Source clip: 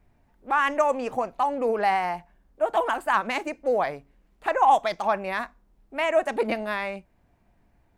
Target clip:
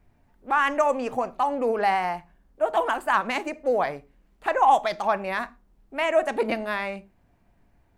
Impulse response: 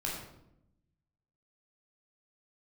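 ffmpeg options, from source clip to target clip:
-filter_complex "[0:a]asplit=2[link_01][link_02];[1:a]atrim=start_sample=2205,afade=type=out:start_time=0.29:duration=0.01,atrim=end_sample=13230,asetrate=83790,aresample=44100[link_03];[link_02][link_03]afir=irnorm=-1:irlink=0,volume=-14dB[link_04];[link_01][link_04]amix=inputs=2:normalize=0"

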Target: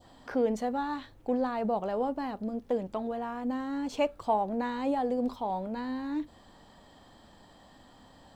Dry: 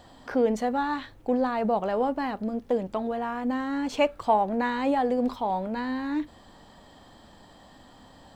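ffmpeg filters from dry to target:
ffmpeg -i in.wav -af "adynamicequalizer=threshold=0.00562:dfrequency=1900:dqfactor=0.89:tfrequency=1900:tqfactor=0.89:attack=5:release=100:ratio=0.375:range=3:mode=cutabove:tftype=bell,volume=-4dB" out.wav

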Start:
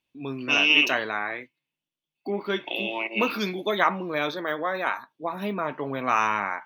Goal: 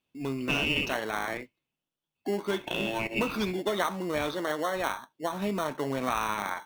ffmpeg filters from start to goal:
ffmpeg -i in.wav -filter_complex "[0:a]asplit=2[link_01][link_02];[link_02]acrusher=samples=18:mix=1:aa=0.000001,volume=-4dB[link_03];[link_01][link_03]amix=inputs=2:normalize=0,acompressor=threshold=-22dB:ratio=4,volume=-3dB" out.wav

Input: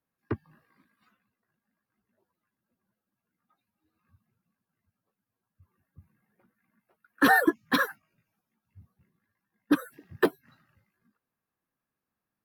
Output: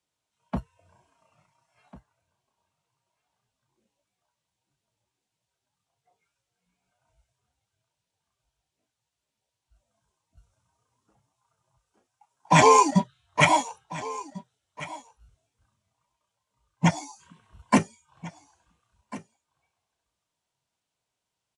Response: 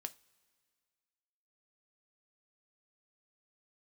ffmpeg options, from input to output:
-filter_complex "[0:a]lowshelf=frequency=290:gain=-6,asplit=2[link_01][link_02];[link_02]aeval=exprs='sgn(val(0))*max(abs(val(0))-0.01,0)':channel_layout=same,volume=-6.5dB[link_03];[link_01][link_03]amix=inputs=2:normalize=0,equalizer=frequency=6200:width=0.56:gain=11.5,aecho=1:1:805:0.119,acrossover=split=140|4000[link_04][link_05][link_06];[link_04]acrusher=samples=18:mix=1:aa=0.000001[link_07];[link_07][link_05][link_06]amix=inputs=3:normalize=0,asetrate=25442,aresample=44100"

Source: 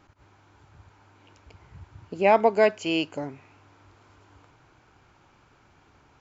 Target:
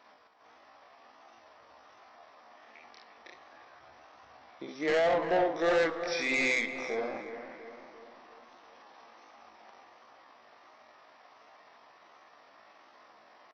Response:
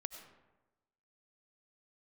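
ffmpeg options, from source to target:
-filter_complex "[0:a]highpass=720,alimiter=limit=-15.5dB:level=0:latency=1:release=44,flanger=delay=20:depth=7.2:speed=3,asetrate=34839,aresample=44100,aresample=16000,asoftclip=type=tanh:threshold=-31dB,aresample=44100,atempo=0.58,asplit=2[link_01][link_02];[link_02]adelay=347,lowpass=frequency=2100:poles=1,volume=-9.5dB,asplit=2[link_03][link_04];[link_04]adelay=347,lowpass=frequency=2100:poles=1,volume=0.54,asplit=2[link_05][link_06];[link_06]adelay=347,lowpass=frequency=2100:poles=1,volume=0.54,asplit=2[link_07][link_08];[link_08]adelay=347,lowpass=frequency=2100:poles=1,volume=0.54,asplit=2[link_09][link_10];[link_10]adelay=347,lowpass=frequency=2100:poles=1,volume=0.54,asplit=2[link_11][link_12];[link_12]adelay=347,lowpass=frequency=2100:poles=1,volume=0.54[link_13];[link_01][link_03][link_05][link_07][link_09][link_11][link_13]amix=inputs=7:normalize=0,asplit=2[link_14][link_15];[1:a]atrim=start_sample=2205[link_16];[link_15][link_16]afir=irnorm=-1:irlink=0,volume=-6dB[link_17];[link_14][link_17]amix=inputs=2:normalize=0,volume=5.5dB"

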